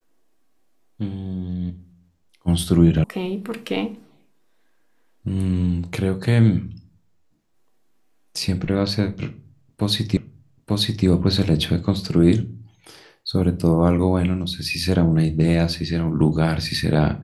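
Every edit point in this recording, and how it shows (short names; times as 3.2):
3.04 sound cut off
10.17 repeat of the last 0.89 s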